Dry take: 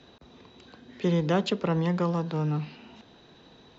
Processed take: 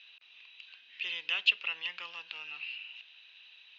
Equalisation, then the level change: resonant high-pass 2.7 kHz, resonance Q 8.2; distance through air 200 m; 0.0 dB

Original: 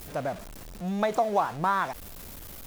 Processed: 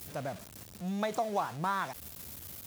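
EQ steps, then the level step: high-pass 78 Hz 24 dB/octave; bass shelf 160 Hz +10 dB; treble shelf 2.4 kHz +8.5 dB; -8.5 dB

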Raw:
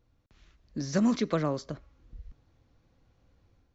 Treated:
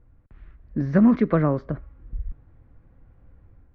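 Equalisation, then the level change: resonant low-pass 1.8 kHz, resonance Q 1.7; tilt EQ -2.5 dB/octave; +3.5 dB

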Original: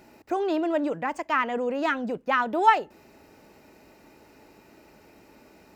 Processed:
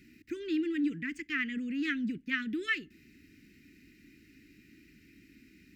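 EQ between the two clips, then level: elliptic band-stop 300–1900 Hz, stop band 80 dB; tone controls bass -1 dB, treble -7 dB; 0.0 dB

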